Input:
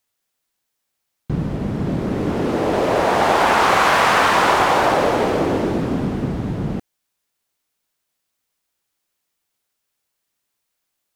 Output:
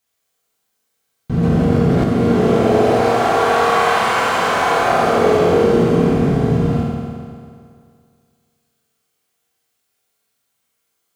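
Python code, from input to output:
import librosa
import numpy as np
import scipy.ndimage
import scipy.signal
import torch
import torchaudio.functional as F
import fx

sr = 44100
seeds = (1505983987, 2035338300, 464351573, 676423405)

y = fx.rider(x, sr, range_db=4, speed_s=0.5)
y = fx.rev_fdn(y, sr, rt60_s=2.2, lf_ratio=0.9, hf_ratio=0.85, size_ms=13.0, drr_db=-7.0)
y = fx.env_flatten(y, sr, amount_pct=70, at=(1.43, 2.04))
y = F.gain(torch.from_numpy(y), -5.5).numpy()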